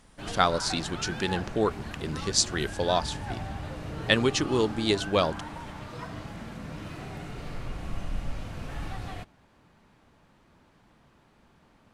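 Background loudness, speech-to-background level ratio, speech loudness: -38.0 LUFS, 10.5 dB, -27.5 LUFS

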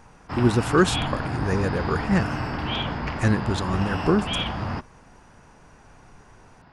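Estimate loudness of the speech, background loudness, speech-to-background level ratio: -24.5 LUFS, -29.0 LUFS, 4.5 dB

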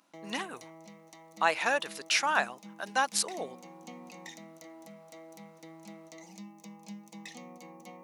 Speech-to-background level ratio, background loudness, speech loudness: 19.0 dB, -49.0 LUFS, -30.0 LUFS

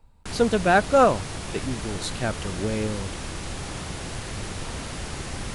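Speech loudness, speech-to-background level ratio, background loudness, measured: -24.0 LUFS, 9.5 dB, -33.5 LUFS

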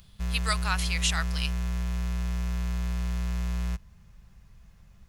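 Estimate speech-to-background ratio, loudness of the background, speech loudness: 1.5 dB, -32.0 LUFS, -30.5 LUFS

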